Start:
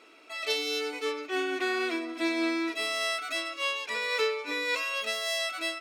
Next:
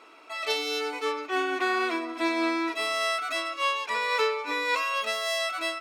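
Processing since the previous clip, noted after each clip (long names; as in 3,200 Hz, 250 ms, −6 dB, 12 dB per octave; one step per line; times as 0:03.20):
parametric band 1,000 Hz +10 dB 1 octave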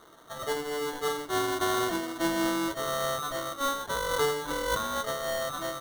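running median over 15 samples
sample-rate reduction 2,500 Hz, jitter 0%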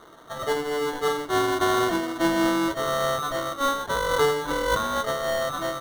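high-shelf EQ 4,500 Hz −7 dB
level +6 dB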